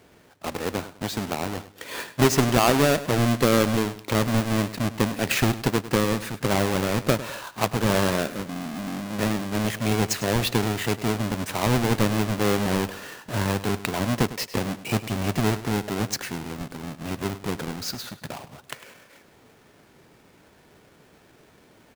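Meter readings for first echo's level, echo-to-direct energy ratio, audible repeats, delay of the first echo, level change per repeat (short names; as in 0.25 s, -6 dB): -15.0 dB, -14.5 dB, 2, 0.102 s, -9.5 dB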